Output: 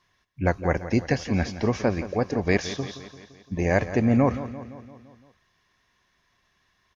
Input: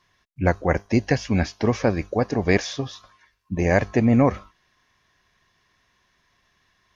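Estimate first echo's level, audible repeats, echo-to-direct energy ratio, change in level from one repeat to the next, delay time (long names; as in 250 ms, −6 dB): −13.5 dB, 5, −11.5 dB, −4.5 dB, 171 ms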